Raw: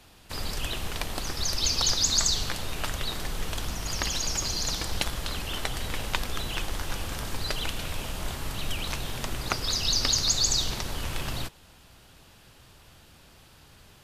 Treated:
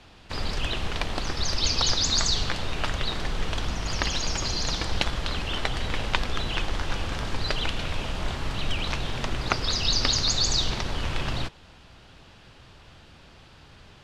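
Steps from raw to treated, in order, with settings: LPF 4600 Hz 12 dB/oct; gain +4 dB

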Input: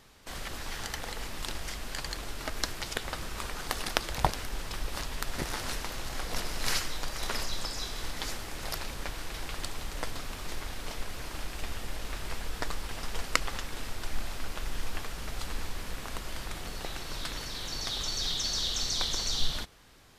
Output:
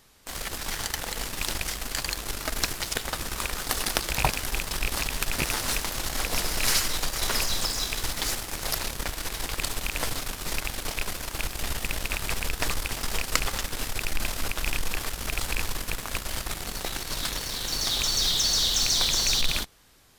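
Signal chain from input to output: rattling part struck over -34 dBFS, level -17 dBFS; high shelf 6600 Hz +9.5 dB; in parallel at -8 dB: fuzz box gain 31 dB, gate -35 dBFS; on the sum: gain -2.5 dB

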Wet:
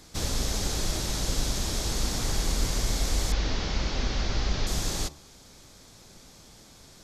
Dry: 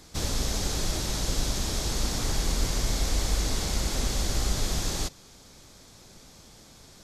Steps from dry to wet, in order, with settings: 3.32–4.67 delta modulation 32 kbps, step -34.5 dBFS; de-hum 73.03 Hz, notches 18

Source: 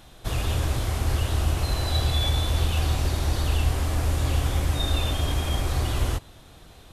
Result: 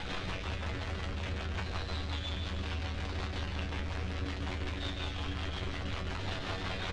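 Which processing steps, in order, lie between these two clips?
infinite clipping; tilt shelf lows -8.5 dB, about 1200 Hz; rotary speaker horn 5.5 Hz; tape spacing loss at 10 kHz 42 dB; resonator 94 Hz, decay 0.18 s, harmonics all, mix 90%; echo 0.141 s -8.5 dB; gain +4 dB

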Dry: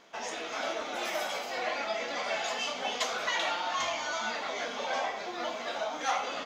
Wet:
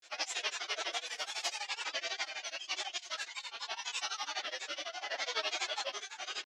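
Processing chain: weighting filter ITU-R 468; negative-ratio compressor -33 dBFS, ratio -1; formant-preserving pitch shift +6 st; grains, grains 12/s, spray 22 ms, pitch spread up and down by 3 st; rotary speaker horn 8 Hz, later 0.7 Hz, at 2.78

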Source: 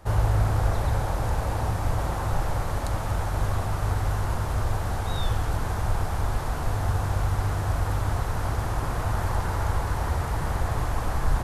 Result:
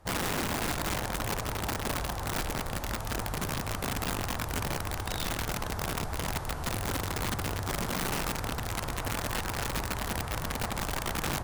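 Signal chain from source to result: 7.81–8.39 flutter echo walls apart 3.9 m, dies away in 0.3 s; added harmonics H 7 -31 dB, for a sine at -10 dBFS; wrapped overs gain 20.5 dB; gain -5.5 dB

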